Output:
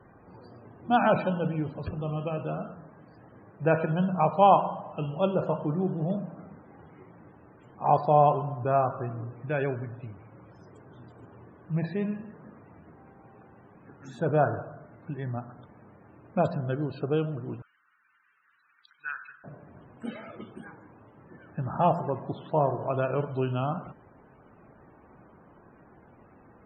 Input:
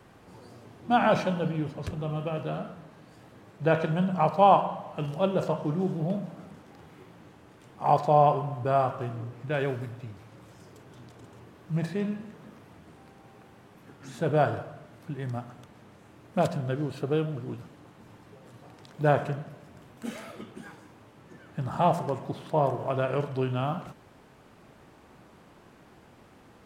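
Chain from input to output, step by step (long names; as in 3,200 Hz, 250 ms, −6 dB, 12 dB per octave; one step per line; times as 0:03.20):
spectral peaks only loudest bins 64
0:17.62–0:19.44: elliptic band-pass filter 1,400–5,700 Hz, stop band 40 dB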